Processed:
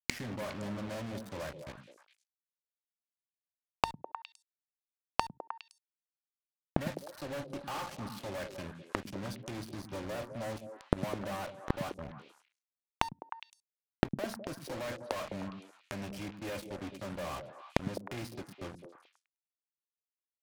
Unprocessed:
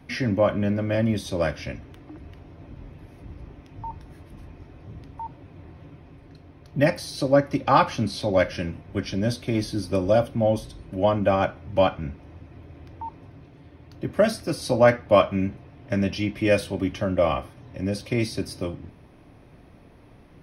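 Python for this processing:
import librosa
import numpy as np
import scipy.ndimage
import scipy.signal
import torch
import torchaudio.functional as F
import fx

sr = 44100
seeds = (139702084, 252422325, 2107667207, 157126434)

y = fx.peak_eq(x, sr, hz=980.0, db=7.0, octaves=0.77)
y = fx.fuzz(y, sr, gain_db=33.0, gate_db=-30.0)
y = fx.gate_flip(y, sr, shuts_db=-26.0, range_db=-32)
y = fx.echo_stepped(y, sr, ms=103, hz=170.0, octaves=1.4, feedback_pct=70, wet_db=-3.0)
y = y * 10.0 ** (8.5 / 20.0)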